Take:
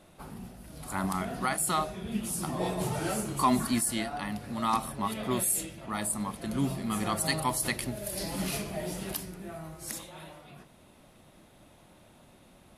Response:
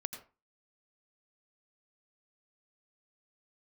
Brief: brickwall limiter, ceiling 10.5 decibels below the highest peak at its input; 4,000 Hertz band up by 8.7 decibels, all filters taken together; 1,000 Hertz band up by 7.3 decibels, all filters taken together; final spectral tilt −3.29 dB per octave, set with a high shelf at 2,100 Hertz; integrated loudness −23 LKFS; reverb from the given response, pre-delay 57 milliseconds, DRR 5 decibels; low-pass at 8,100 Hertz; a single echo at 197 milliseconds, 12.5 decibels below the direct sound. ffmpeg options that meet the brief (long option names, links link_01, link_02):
-filter_complex "[0:a]lowpass=8100,equalizer=frequency=1000:width_type=o:gain=7.5,highshelf=frequency=2100:gain=3.5,equalizer=frequency=4000:width_type=o:gain=7,alimiter=limit=-15.5dB:level=0:latency=1,aecho=1:1:197:0.237,asplit=2[link_01][link_02];[1:a]atrim=start_sample=2205,adelay=57[link_03];[link_02][link_03]afir=irnorm=-1:irlink=0,volume=-4.5dB[link_04];[link_01][link_04]amix=inputs=2:normalize=0,volume=5dB"